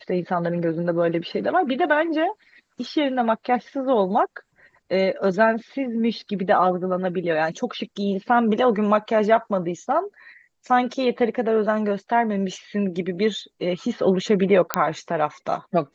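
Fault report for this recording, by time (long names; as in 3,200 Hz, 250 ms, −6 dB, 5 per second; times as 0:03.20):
0:14.74: click −2 dBFS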